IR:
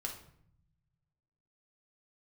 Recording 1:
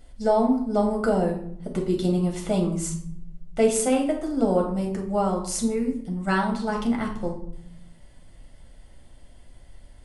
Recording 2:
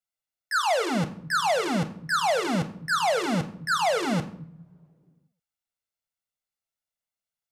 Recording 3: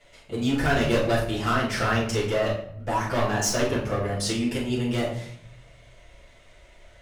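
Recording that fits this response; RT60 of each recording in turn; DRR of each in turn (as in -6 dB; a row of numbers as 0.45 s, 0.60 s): 1; 0.65 s, no single decay rate, 0.65 s; 0.0 dB, 8.0 dB, -9.0 dB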